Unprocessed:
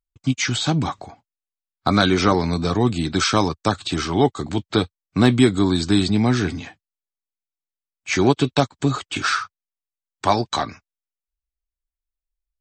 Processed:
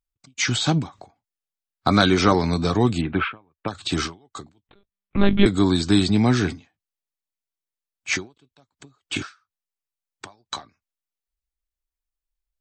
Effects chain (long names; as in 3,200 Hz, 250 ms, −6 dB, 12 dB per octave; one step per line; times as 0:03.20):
0:03.01–0:03.68: elliptic low-pass filter 2,800 Hz, stop band 60 dB
0:04.67–0:05.46: one-pitch LPC vocoder at 8 kHz 200 Hz
every ending faded ahead of time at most 210 dB per second